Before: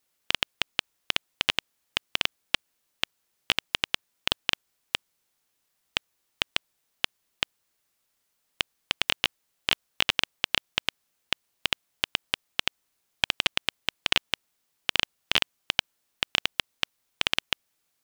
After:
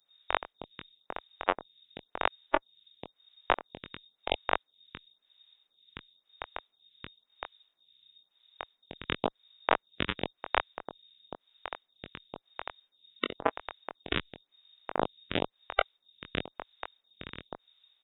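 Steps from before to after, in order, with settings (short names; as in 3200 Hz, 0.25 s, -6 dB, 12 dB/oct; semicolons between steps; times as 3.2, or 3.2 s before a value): spectral noise reduction 15 dB; in parallel at -2.5 dB: compressor, threshold -34 dBFS, peak gain reduction 16.5 dB; on the sum: added noise brown -62 dBFS; doubler 22 ms -6 dB; inverted band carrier 3700 Hz; photocell phaser 0.97 Hz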